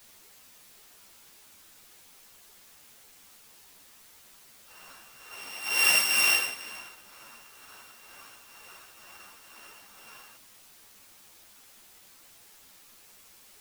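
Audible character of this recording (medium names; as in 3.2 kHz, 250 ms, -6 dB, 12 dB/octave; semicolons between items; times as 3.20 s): a buzz of ramps at a fixed pitch in blocks of 16 samples; tremolo triangle 2.1 Hz, depth 65%; a quantiser's noise floor 10-bit, dither triangular; a shimmering, thickened sound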